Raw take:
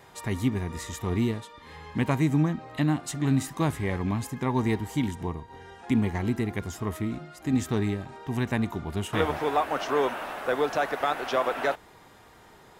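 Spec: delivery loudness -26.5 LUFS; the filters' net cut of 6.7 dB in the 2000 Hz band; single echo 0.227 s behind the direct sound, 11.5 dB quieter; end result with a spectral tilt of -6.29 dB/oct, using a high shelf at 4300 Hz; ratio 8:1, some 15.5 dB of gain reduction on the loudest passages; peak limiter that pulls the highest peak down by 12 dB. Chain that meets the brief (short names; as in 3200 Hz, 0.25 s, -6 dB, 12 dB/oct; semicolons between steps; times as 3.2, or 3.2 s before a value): bell 2000 Hz -7.5 dB; high shelf 4300 Hz -7 dB; compressor 8:1, threshold -36 dBFS; limiter -36 dBFS; echo 0.227 s -11.5 dB; gain +18.5 dB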